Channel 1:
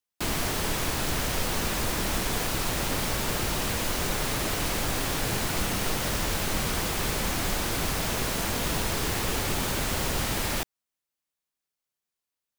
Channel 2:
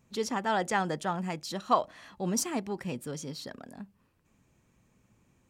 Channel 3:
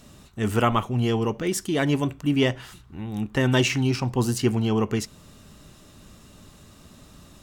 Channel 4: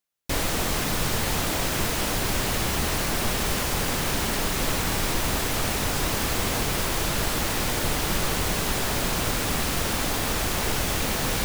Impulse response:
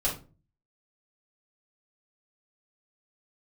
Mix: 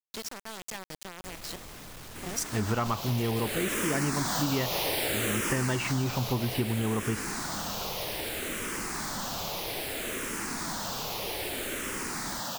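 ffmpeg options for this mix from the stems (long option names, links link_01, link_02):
-filter_complex "[0:a]highpass=210,dynaudnorm=framelen=120:gausssize=11:maxgain=10dB,asplit=2[link_01][link_02];[link_02]afreqshift=-0.62[link_03];[link_01][link_03]amix=inputs=2:normalize=1,adelay=1950,volume=-5.5dB,afade=type=in:start_time=3.37:duration=0.53:silence=0.421697,afade=type=out:start_time=5.66:duration=0.3:silence=0.473151[link_04];[1:a]acrossover=split=120|3000[link_05][link_06][link_07];[link_06]acompressor=threshold=-41dB:ratio=5[link_08];[link_05][link_08][link_07]amix=inputs=3:normalize=0,acrusher=bits=5:mix=0:aa=0.000001,volume=-0.5dB,asplit=3[link_09][link_10][link_11];[link_09]atrim=end=1.56,asetpts=PTS-STARTPTS,afade=type=out:start_time=1.556:duration=0.004:curve=hsin[link_12];[link_10]atrim=start=1.56:end=2.23,asetpts=PTS-STARTPTS,volume=0[link_13];[link_11]atrim=start=2.23,asetpts=PTS-STARTPTS,afade=type=in:duration=0.004:curve=hsin[link_14];[link_12][link_13][link_14]concat=n=3:v=0:a=1[link_15];[2:a]lowpass=2300,equalizer=frequency=360:width_type=o:width=2.4:gain=-4,adelay=2150,volume=0dB[link_16];[3:a]asoftclip=type=tanh:threshold=-26dB,adelay=950,volume=-15dB[link_17];[link_04][link_15][link_16][link_17]amix=inputs=4:normalize=0,acompressor=threshold=-24dB:ratio=10"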